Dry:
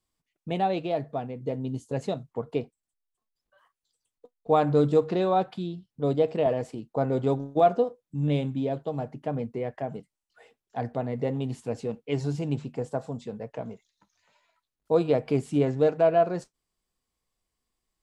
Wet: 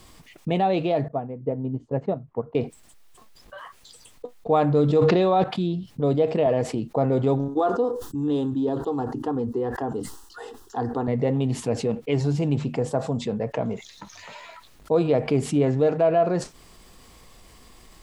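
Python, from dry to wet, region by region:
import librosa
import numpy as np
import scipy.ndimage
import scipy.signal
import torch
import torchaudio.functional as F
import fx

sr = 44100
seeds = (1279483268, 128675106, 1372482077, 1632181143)

y = fx.chain(x, sr, fx.lowpass(hz=1400.0, slope=12),
    fx.upward_expand(threshold_db=-40.0, expansion=2.5), at=(1.08, 2.55))
y = fx.chain(y, sr, fx.lowpass(hz=5700.0, slope=12),
    fx.high_shelf(hz=3500.0, db=6.0),
    fx.sustainer(db_per_s=23.0), at=(4.84, 5.44))
y = fx.chain(y, sr, fx.fixed_phaser(hz=610.0, stages=6),
    fx.sustainer(db_per_s=140.0), at=(7.48, 11.08))
y = fx.high_shelf(y, sr, hz=5500.0, db=-6.5)
y = fx.notch(y, sr, hz=1500.0, q=24.0)
y = fx.env_flatten(y, sr, amount_pct=50)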